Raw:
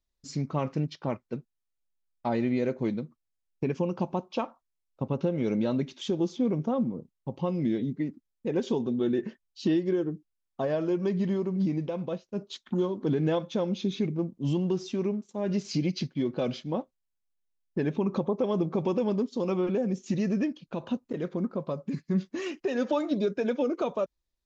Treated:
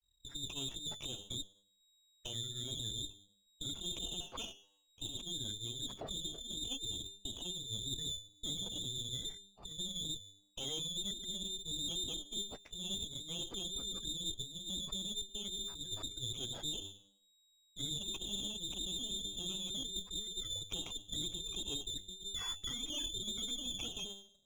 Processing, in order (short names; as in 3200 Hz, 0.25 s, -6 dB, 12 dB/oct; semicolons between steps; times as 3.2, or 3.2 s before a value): dynamic EQ 130 Hz, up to +5 dB, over -40 dBFS, Q 0.72; de-hum 99.41 Hz, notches 11; spectral gate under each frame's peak -30 dB strong; low shelf 390 Hz +8.5 dB; negative-ratio compressor -24 dBFS, ratio -0.5; limiter -22.5 dBFS, peak gain reduction 12.5 dB; grains 0.124 s, grains 20/s, spray 16 ms, pitch spread up and down by 0 st; inverted band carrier 3800 Hz; running maximum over 5 samples; gain -7 dB